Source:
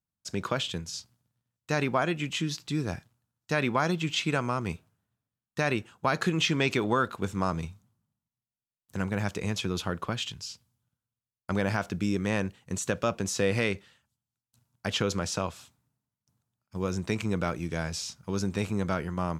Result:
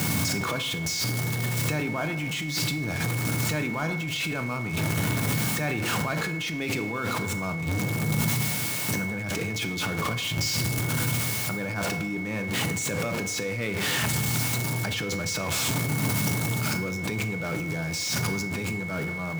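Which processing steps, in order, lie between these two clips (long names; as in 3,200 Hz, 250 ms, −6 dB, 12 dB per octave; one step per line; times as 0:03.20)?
converter with a step at zero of −28.5 dBFS
high-pass filter 110 Hz 24 dB per octave
low-shelf EQ 200 Hz +7 dB
brickwall limiter −20.5 dBFS, peak gain reduction 11 dB
compressor whose output falls as the input rises −35 dBFS, ratio −1
steady tone 2,200 Hz −42 dBFS
feedback delay network reverb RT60 0.99 s, high-frequency decay 0.6×, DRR 8 dB
level that may fall only so fast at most 22 dB per second
level +5 dB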